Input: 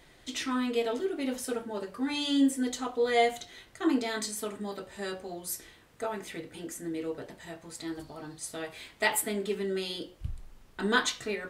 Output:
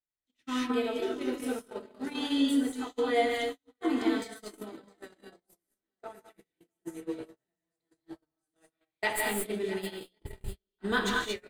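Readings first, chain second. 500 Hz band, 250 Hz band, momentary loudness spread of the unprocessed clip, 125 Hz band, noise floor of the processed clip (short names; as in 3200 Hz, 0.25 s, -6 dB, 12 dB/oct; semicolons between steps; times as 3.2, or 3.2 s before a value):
-1.5 dB, -0.5 dB, 15 LU, -3.0 dB, under -85 dBFS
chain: tracing distortion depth 0.021 ms; on a send: swung echo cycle 1.104 s, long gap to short 1.5:1, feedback 32%, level -13 dB; on the sum: non-linear reverb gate 0.25 s rising, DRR 0 dB; in parallel at -1 dB: compressor 6:1, threshold -37 dBFS, peak gain reduction 18 dB; on the sum: dynamic EQ 6100 Hz, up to -6 dB, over -47 dBFS, Q 1.2; gate -27 dBFS, range -48 dB; gain -4.5 dB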